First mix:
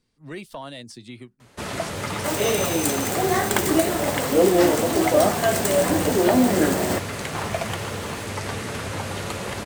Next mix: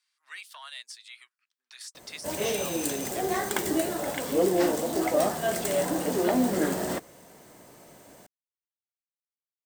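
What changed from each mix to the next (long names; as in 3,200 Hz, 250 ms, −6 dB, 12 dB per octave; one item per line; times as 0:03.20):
speech: add high-pass filter 1,200 Hz 24 dB per octave
first sound: muted
second sound −6.5 dB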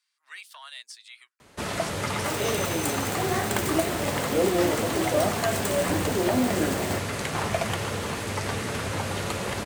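first sound: unmuted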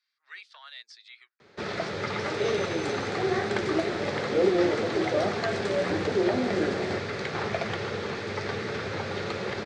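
master: add loudspeaker in its box 130–4,800 Hz, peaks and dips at 160 Hz −3 dB, 270 Hz −7 dB, 400 Hz +5 dB, 660 Hz −4 dB, 1,000 Hz −7 dB, 2,900 Hz −7 dB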